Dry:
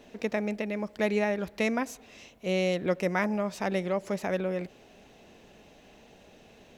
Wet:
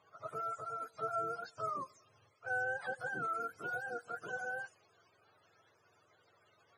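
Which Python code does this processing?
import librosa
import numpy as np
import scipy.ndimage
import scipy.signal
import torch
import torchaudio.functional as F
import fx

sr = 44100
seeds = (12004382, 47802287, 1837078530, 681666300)

y = fx.octave_mirror(x, sr, pivot_hz=530.0)
y = np.diff(y, prepend=0.0)
y = fx.env_lowpass(y, sr, base_hz=2400.0, full_db=-47.0)
y = y * 10.0 ** (9.5 / 20.0)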